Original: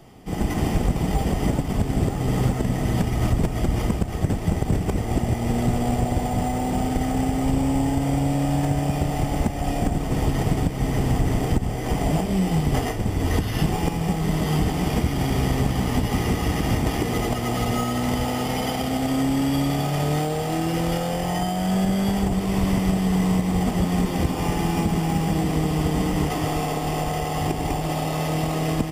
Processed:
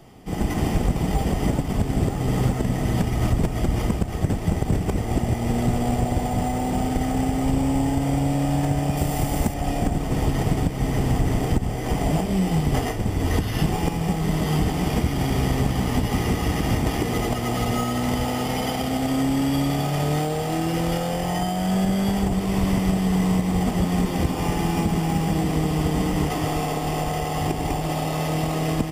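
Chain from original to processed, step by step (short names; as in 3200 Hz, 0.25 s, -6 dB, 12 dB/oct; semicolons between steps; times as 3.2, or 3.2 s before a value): 8.97–9.54 high shelf 7400 Hz +11.5 dB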